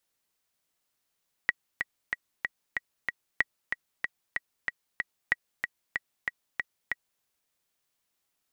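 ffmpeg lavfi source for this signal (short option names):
-f lavfi -i "aevalsrc='pow(10,(-9.5-6*gte(mod(t,6*60/188),60/188))/20)*sin(2*PI*1920*mod(t,60/188))*exp(-6.91*mod(t,60/188)/0.03)':d=5.74:s=44100"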